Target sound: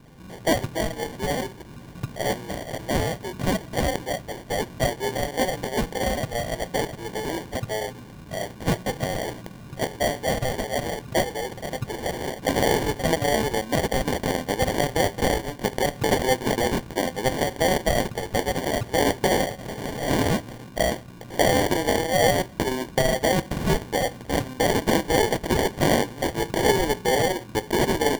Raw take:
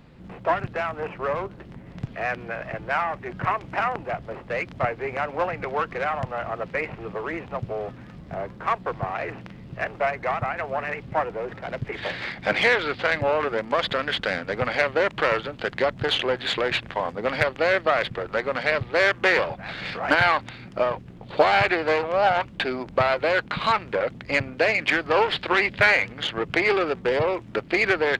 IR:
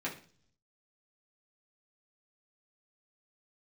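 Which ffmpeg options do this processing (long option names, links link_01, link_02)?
-filter_complex "[0:a]highshelf=frequency=7300:gain=11.5,alimiter=limit=-10.5dB:level=0:latency=1:release=52,asplit=2[link_01][link_02];[1:a]atrim=start_sample=2205[link_03];[link_02][link_03]afir=irnorm=-1:irlink=0,volume=-14dB[link_04];[link_01][link_04]amix=inputs=2:normalize=0,acrusher=samples=34:mix=1:aa=0.000001"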